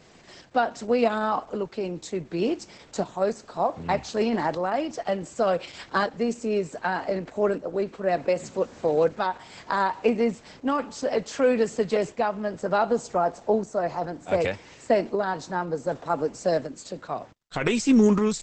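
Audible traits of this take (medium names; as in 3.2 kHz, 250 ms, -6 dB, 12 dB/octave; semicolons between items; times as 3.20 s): a quantiser's noise floor 12-bit, dither none; tremolo saw up 0.66 Hz, depth 45%; Opus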